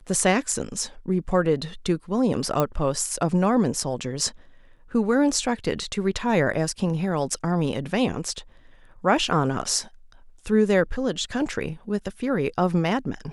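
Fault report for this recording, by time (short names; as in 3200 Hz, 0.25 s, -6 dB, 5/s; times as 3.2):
2.6 pop -9 dBFS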